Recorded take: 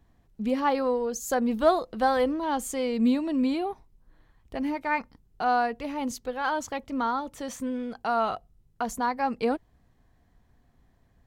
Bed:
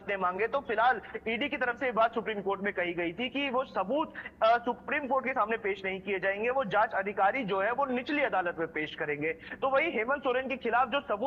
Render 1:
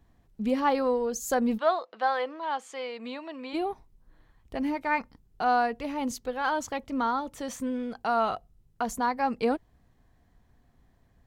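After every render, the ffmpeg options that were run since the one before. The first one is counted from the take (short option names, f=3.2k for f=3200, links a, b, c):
-filter_complex "[0:a]asplit=3[a][b][c];[a]afade=t=out:st=1.57:d=0.02[d];[b]highpass=700,lowpass=3.7k,afade=t=in:st=1.57:d=0.02,afade=t=out:st=3.53:d=0.02[e];[c]afade=t=in:st=3.53:d=0.02[f];[d][e][f]amix=inputs=3:normalize=0"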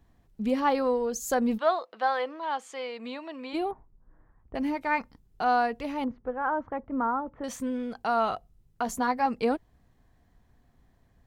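-filter_complex "[0:a]asettb=1/sr,asplit=3[a][b][c];[a]atrim=end=3.714[d];[b]atrim=start=3.71:end=4.55,asetpts=PTS-STARTPTS,afade=t=in:d=0.004:c=qsin,afade=t=out:st=0.836:d=0.004:c=qsin,lowpass=f=1.6k:w=0.5412,lowpass=f=1.6k:w=1.3066[e];[c]atrim=start=4.546[f];[d][e]acrossfade=d=0.004:c1=hsin:c2=qsin[g];[g][f]acrossfade=d=0.004:c1=qsin:c2=hsin,asettb=1/sr,asplit=3[h][i][j];[h]atrim=end=6.044[k];[i]atrim=start=6.04:end=7.44,asetpts=PTS-STARTPTS,afade=t=in:d=0.004:c=qsin,afade=t=out:st=1.396:d=0.004:c=qsin,lowpass=f=1.6k:w=0.5412,lowpass=f=1.6k:w=1.3066[l];[j]atrim=start=7.436[m];[k][l]acrossfade=d=0.004:c1=hsin:c2=qsin[n];[n][m]acrossfade=d=0.004:c1=qsin:c2=hsin,asettb=1/sr,asplit=3[o][p][q];[o]atrim=end=8.854[r];[p]atrim=start=8.85:end=9.26,asetpts=PTS-STARTPTS,afade=t=in:d=0.004:c=qsin,afade=t=out:st=0.406:d=0.004:c=qsin,asplit=2[s][t];[t]adelay=12,volume=-6dB[u];[s][u]amix=inputs=2:normalize=0,atrim=end_sample=18081[v];[q]atrim=start=9.256[w];[r][v]acrossfade=d=0.004:c1=hsin:c2=qsin[x];[x][w]acrossfade=d=0.004:c1=qsin:c2=hsin"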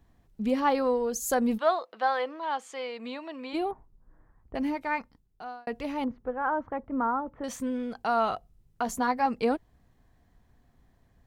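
-filter_complex "[0:a]asettb=1/sr,asplit=3[a][b][c];[a]atrim=end=1.064[d];[b]atrim=start=1.06:end=1.75,asetpts=PTS-STARTPTS,afade=t=in:d=0.004:c=qsin,afade=t=out:st=0.686:d=0.004:c=qsin,equalizer=f=11k:w=1.4:g=6.5[e];[c]atrim=start=1.746[f];[d][e]acrossfade=d=0.004:c1=hsin:c2=qsin[g];[g][f]acrossfade=d=0.004:c1=qsin:c2=hsin,asplit=2[h][i];[h]atrim=end=5.67,asetpts=PTS-STARTPTS,afade=t=out:st=4.63:d=1.04[j];[i]atrim=start=5.67,asetpts=PTS-STARTPTS,afade=t=in:d=0.004:c=hsin[k];[j][k]concat=n=2:v=0:a=1"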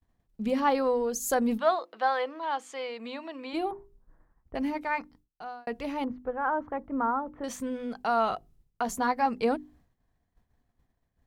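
-af "bandreject=f=50:t=h:w=6,bandreject=f=100:t=h:w=6,bandreject=f=150:t=h:w=6,bandreject=f=200:t=h:w=6,bandreject=f=250:t=h:w=6,bandreject=f=300:t=h:w=6,bandreject=f=350:t=h:w=6,bandreject=f=400:t=h:w=6,agate=range=-33dB:threshold=-54dB:ratio=3:detection=peak"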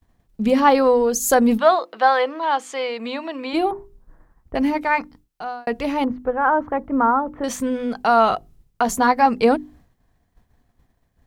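-af "volume=10.5dB,alimiter=limit=-3dB:level=0:latency=1"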